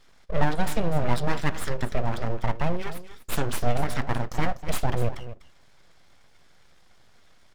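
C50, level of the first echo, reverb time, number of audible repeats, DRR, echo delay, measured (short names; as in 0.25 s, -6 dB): none, -13.5 dB, none, 1, none, 0.247 s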